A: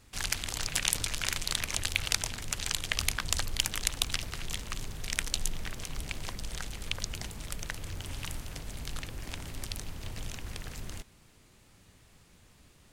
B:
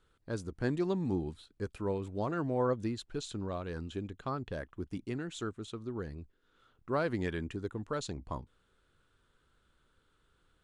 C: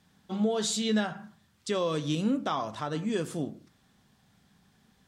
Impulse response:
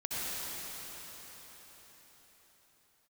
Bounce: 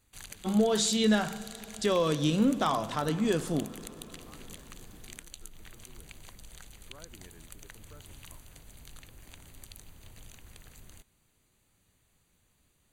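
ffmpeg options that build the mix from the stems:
-filter_complex "[0:a]highshelf=f=8.7k:g=10,volume=-12dB[a];[1:a]volume=-20dB[b];[2:a]adelay=150,volume=2dB,asplit=2[c][d];[d]volume=-22dB[e];[a][b]amix=inputs=2:normalize=0,asuperstop=centerf=5300:order=4:qfactor=5.4,acompressor=threshold=-41dB:ratio=6,volume=0dB[f];[3:a]atrim=start_sample=2205[g];[e][g]afir=irnorm=-1:irlink=0[h];[c][f][h]amix=inputs=3:normalize=0"

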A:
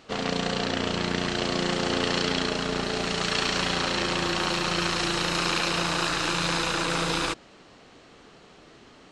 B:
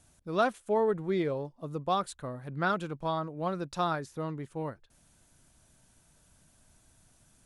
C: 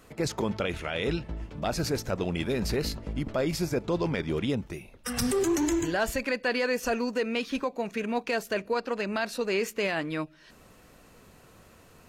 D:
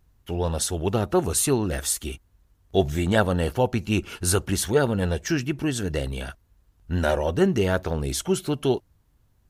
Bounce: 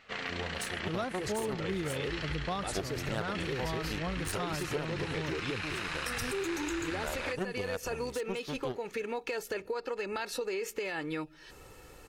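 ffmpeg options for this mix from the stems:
-filter_complex "[0:a]equalizer=f=2k:t=o:w=1.4:g=14.5,flanger=delay=1.5:depth=4.2:regen=-63:speed=0.65:shape=sinusoidal,volume=-9dB[a];[1:a]bass=f=250:g=8,treble=f=4k:g=8,adelay=600,volume=3dB[b];[2:a]aecho=1:1:2.3:0.65,alimiter=limit=-20.5dB:level=0:latency=1,adelay=1000,volume=1dB[c];[3:a]aeval=exprs='0.631*(cos(1*acos(clip(val(0)/0.631,-1,1)))-cos(1*PI/2))+0.0708*(cos(7*acos(clip(val(0)/0.631,-1,1)))-cos(7*PI/2))':c=same,volume=-2.5dB[d];[a][b][c][d]amix=inputs=4:normalize=0,acompressor=threshold=-33dB:ratio=4"

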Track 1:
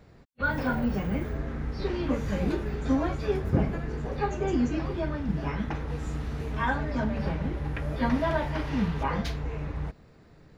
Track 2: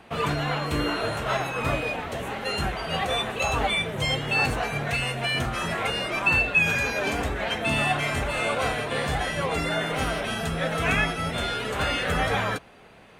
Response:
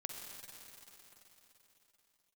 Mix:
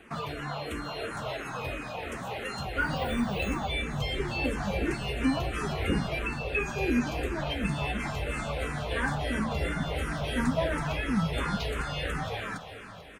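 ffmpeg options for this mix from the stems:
-filter_complex "[0:a]adelay=2350,volume=-0.5dB[a];[1:a]acompressor=threshold=-30dB:ratio=6,volume=-2.5dB,asplit=3[b][c][d];[c]volume=-3dB[e];[d]volume=-10dB[f];[2:a]atrim=start_sample=2205[g];[e][g]afir=irnorm=-1:irlink=0[h];[f]aecho=0:1:441|882|1323|1764|2205|2646|3087|3528|3969:1|0.57|0.325|0.185|0.106|0.0602|0.0343|0.0195|0.0111[i];[a][b][h][i]amix=inputs=4:normalize=0,asplit=2[j][k];[k]afreqshift=-2.9[l];[j][l]amix=inputs=2:normalize=1"

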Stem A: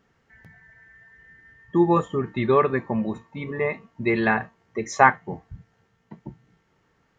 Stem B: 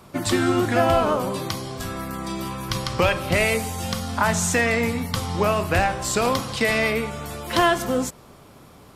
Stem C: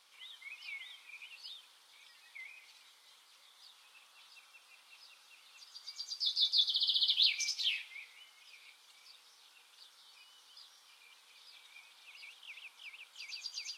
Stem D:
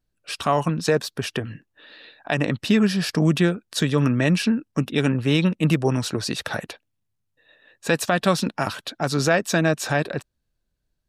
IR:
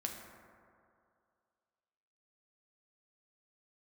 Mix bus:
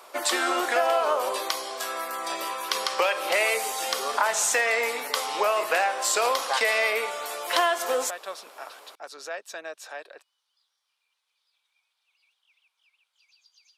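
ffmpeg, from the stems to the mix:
-filter_complex "[0:a]adelay=1500,volume=-12dB[a];[1:a]volume=2.5dB[b];[2:a]asoftclip=type=tanh:threshold=-28.5dB,volume=-17dB[c];[3:a]volume=-14.5dB[d];[a][b][c][d]amix=inputs=4:normalize=0,highpass=f=490:w=0.5412,highpass=f=490:w=1.3066,acompressor=threshold=-20dB:ratio=4"

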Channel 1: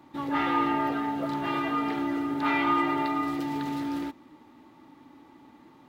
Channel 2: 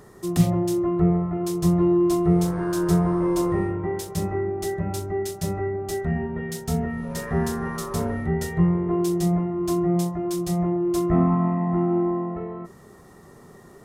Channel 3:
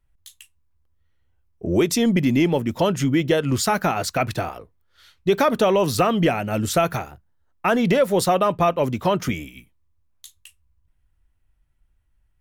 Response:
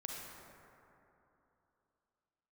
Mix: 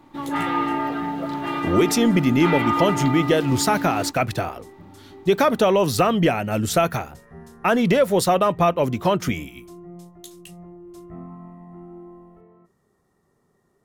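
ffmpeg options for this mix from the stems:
-filter_complex "[0:a]volume=2.5dB[a];[1:a]volume=-19dB[b];[2:a]volume=0.5dB[c];[a][b][c]amix=inputs=3:normalize=0"

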